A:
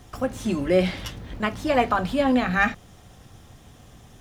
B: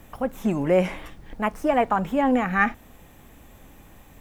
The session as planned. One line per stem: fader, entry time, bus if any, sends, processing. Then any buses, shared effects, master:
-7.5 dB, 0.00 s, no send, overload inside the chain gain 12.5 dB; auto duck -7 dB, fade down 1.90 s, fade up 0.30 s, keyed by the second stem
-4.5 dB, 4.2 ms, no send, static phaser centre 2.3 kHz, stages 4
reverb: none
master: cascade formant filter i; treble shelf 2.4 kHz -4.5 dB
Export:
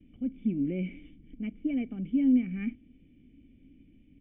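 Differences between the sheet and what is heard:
stem A -7.5 dB -> -17.0 dB; stem B -4.5 dB -> +2.0 dB

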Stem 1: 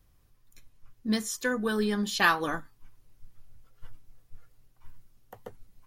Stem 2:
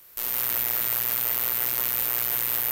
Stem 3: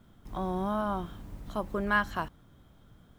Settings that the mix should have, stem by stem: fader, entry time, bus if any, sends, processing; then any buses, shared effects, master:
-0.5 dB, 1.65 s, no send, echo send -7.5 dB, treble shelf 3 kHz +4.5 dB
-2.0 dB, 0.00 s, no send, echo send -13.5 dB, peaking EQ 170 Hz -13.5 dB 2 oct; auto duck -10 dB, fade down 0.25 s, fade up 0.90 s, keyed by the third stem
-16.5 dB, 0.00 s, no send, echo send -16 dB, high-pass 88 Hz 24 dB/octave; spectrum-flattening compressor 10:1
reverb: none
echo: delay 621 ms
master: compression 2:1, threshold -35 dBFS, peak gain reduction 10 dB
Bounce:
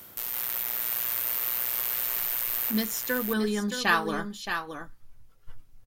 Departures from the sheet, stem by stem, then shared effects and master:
stem 1: missing treble shelf 3 kHz +4.5 dB; stem 2 -2.0 dB -> +5.0 dB; master: missing compression 2:1, threshold -35 dBFS, peak gain reduction 10 dB

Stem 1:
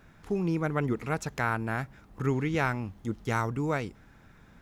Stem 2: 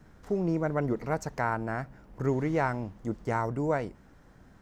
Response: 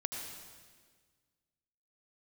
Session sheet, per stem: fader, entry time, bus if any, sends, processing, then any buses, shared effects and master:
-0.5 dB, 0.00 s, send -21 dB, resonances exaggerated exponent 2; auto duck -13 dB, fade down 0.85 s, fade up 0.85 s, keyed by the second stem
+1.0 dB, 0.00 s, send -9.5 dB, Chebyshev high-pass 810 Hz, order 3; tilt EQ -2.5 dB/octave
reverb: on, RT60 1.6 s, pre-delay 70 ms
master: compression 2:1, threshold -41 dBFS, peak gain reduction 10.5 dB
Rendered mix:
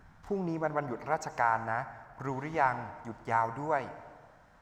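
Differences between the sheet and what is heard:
stem 2: polarity flipped; master: missing compression 2:1, threshold -41 dBFS, peak gain reduction 10.5 dB

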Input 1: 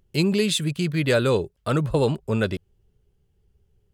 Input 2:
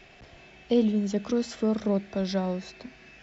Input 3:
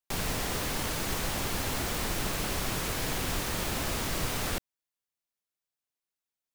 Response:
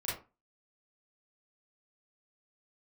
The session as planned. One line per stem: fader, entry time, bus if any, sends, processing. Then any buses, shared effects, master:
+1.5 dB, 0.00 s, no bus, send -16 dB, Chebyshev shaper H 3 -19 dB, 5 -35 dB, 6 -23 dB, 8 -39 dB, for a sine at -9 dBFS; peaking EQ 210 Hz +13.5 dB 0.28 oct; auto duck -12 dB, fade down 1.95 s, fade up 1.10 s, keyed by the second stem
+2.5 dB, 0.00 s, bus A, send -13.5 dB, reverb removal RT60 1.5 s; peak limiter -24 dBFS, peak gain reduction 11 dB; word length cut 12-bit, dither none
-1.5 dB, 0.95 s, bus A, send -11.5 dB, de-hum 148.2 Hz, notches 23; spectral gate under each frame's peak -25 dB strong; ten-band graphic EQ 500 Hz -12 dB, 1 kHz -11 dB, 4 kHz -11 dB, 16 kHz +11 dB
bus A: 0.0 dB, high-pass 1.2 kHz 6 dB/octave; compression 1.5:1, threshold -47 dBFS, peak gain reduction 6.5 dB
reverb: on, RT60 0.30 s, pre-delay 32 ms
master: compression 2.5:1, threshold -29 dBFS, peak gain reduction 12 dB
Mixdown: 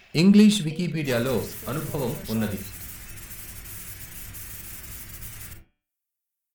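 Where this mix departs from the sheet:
stem 2: send off; master: missing compression 2.5:1, threshold -29 dBFS, peak gain reduction 12 dB

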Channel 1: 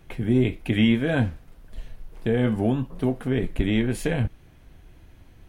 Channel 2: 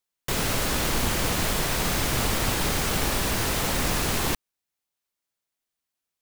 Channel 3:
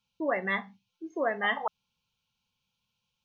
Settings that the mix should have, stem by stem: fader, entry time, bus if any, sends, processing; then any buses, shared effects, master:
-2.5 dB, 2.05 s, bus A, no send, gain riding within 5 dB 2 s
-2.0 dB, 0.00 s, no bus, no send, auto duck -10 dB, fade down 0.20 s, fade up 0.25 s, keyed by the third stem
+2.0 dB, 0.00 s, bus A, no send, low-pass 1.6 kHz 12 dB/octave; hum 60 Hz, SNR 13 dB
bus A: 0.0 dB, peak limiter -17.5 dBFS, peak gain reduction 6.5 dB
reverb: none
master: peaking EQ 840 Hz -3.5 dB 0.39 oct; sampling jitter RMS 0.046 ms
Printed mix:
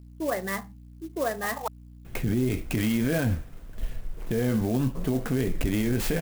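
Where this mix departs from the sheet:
stem 1 -2.5 dB -> +7.0 dB; stem 2: muted

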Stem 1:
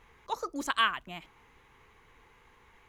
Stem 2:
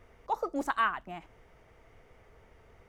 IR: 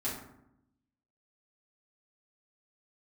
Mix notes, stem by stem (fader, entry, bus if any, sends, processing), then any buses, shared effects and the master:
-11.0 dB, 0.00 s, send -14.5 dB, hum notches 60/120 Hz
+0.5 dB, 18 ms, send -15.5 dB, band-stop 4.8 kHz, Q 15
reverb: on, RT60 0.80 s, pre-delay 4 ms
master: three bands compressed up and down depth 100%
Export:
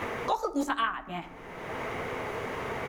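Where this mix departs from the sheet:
stem 1 -11.0 dB -> -3.0 dB; stem 2: missing band-stop 4.8 kHz, Q 15

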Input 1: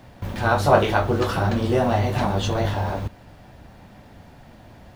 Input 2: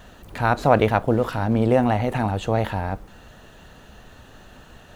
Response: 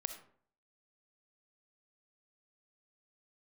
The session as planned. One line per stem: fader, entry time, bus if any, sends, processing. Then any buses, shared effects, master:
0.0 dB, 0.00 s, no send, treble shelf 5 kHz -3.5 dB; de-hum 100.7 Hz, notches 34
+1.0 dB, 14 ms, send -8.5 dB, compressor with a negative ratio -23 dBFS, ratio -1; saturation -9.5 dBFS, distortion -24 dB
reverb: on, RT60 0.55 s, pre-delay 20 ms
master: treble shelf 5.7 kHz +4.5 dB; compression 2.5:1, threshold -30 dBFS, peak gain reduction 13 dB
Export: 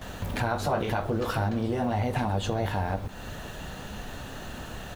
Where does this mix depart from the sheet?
stem 1: missing de-hum 100.7 Hz, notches 34; stem 2: polarity flipped

